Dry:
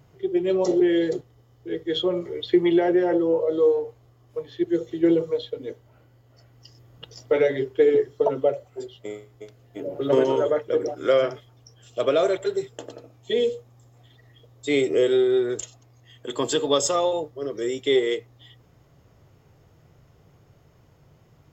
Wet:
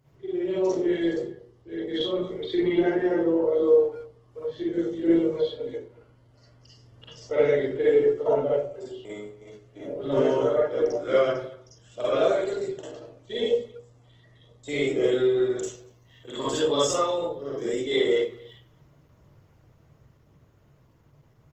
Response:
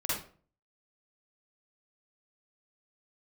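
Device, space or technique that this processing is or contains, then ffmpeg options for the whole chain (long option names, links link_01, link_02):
speakerphone in a meeting room: -filter_complex "[1:a]atrim=start_sample=2205[link_01];[0:a][link_01]afir=irnorm=-1:irlink=0,asplit=2[link_02][link_03];[link_03]adelay=230,highpass=300,lowpass=3400,asoftclip=type=hard:threshold=-10.5dB,volume=-21dB[link_04];[link_02][link_04]amix=inputs=2:normalize=0,dynaudnorm=framelen=160:gausssize=31:maxgain=12.5dB,volume=-9dB" -ar 48000 -c:a libopus -b:a 16k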